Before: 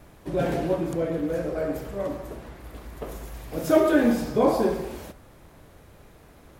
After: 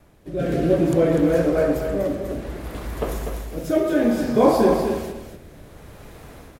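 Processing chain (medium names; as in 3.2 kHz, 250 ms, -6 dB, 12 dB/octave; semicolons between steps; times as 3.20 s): level rider gain up to 11 dB; rotary cabinet horn 0.6 Hz; on a send: feedback delay 246 ms, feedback 18%, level -7 dB; on the sum: trim -1 dB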